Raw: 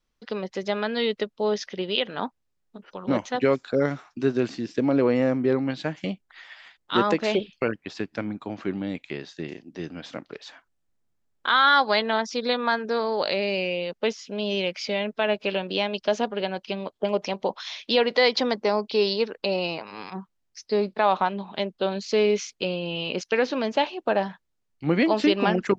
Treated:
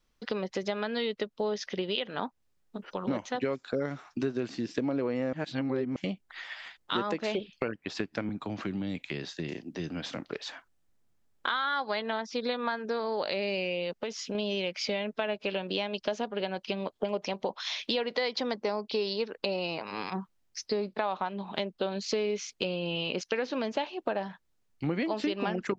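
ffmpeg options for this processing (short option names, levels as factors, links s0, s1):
-filter_complex "[0:a]asettb=1/sr,asplit=3[s0][s1][s2];[s0]atrim=end=8.294[s3];[s1]atrim=start=8.29:end=10.2,asetpts=PTS-STARTPTS,afade=t=in:d=0.004:c=qsin,afade=t=out:st=1.906:d=0.004:c=qsin,acrossover=split=200|3000[s4][s5][s6];[s5]acompressor=threshold=0.0141:ratio=6:attack=3.2:release=140:knee=2.83:detection=peak[s7];[s4][s7][s6]amix=inputs=3:normalize=0[s8];[s2]atrim=start=10.196[s9];[s3][s8]acrossfade=d=0.004:c1=hsin:c2=qsin[s10];[s10][s9]acrossfade=d=0.004:c1=qsin:c2=hsin,asettb=1/sr,asplit=3[s11][s12][s13];[s11]atrim=end=11.644[s14];[s12]atrim=start=11.64:end=13.28,asetpts=PTS-STARTPTS,afade=t=in:d=0.004:c=qsin,afade=t=out:st=1.636:d=0.004:c=qsin,acrossover=split=4600[s15][s16];[s16]acompressor=threshold=0.00562:ratio=4:attack=1:release=60[s17];[s15][s17]amix=inputs=2:normalize=0[s18];[s13]atrim=start=13.276[s19];[s14][s18]acrossfade=d=0.004:c1=hsin:c2=qsin[s20];[s20][s19]acrossfade=d=0.004:c1=qsin:c2=hsin,asettb=1/sr,asplit=3[s21][s22][s23];[s21]atrim=end=13.934[s24];[s22]atrim=start=13.93:end=14.35,asetpts=PTS-STARTPTS,afade=t=in:d=0.004:c=qsin,afade=t=out:st=0.416:d=0.004:c=qsin,acompressor=threshold=0.0251:ratio=6:attack=3.2:release=140:knee=1:detection=peak[s25];[s23]atrim=start=14.346[s26];[s24][s25]acrossfade=d=0.004:c1=hsin:c2=qsin[s27];[s27][s26]acrossfade=d=0.004:c1=qsin:c2=hsin,asplit=3[s28][s29][s30];[s28]atrim=end=5.332[s31];[s29]atrim=start=5.328:end=5.962,asetpts=PTS-STARTPTS,areverse[s32];[s30]atrim=start=5.958[s33];[s31][s32]acrossfade=d=0.004:c1=hsin:c2=hsin[s34];[s34][s33]acrossfade=d=0.004:c1=hsin:c2=hsin,acompressor=threshold=0.0224:ratio=4,volume=1.5"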